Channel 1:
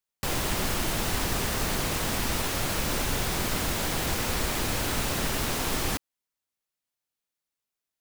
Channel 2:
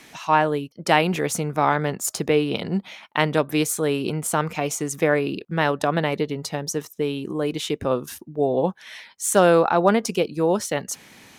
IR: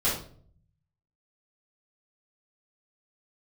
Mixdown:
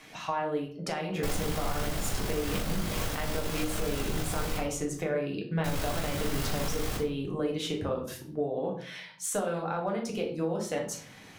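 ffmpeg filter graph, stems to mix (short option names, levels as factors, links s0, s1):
-filter_complex "[0:a]tremolo=f=50:d=0.519,adelay=1000,volume=0.447,asplit=3[s0][s1][s2];[s0]atrim=end=4.58,asetpts=PTS-STARTPTS,afade=t=out:st=4.576:d=0.004:c=hsin[s3];[s1]atrim=start=4.58:end=5.64,asetpts=PTS-STARTPTS,volume=0[s4];[s2]atrim=start=5.64,asetpts=PTS-STARTPTS,afade=t=in:d=0.004:c=hsin[s5];[s3][s4][s5]concat=n=3:v=0:a=1,asplit=2[s6][s7];[s7]volume=0.422[s8];[1:a]flanger=delay=9.3:depth=2.2:regen=-69:speed=0.49:shape=sinusoidal,highshelf=f=6600:g=-6,acompressor=threshold=0.0316:ratio=6,volume=0.75,asplit=2[s9][s10];[s10]volume=0.355[s11];[2:a]atrim=start_sample=2205[s12];[s8][s11]amix=inputs=2:normalize=0[s13];[s13][s12]afir=irnorm=-1:irlink=0[s14];[s6][s9][s14]amix=inputs=3:normalize=0,alimiter=limit=0.1:level=0:latency=1:release=215"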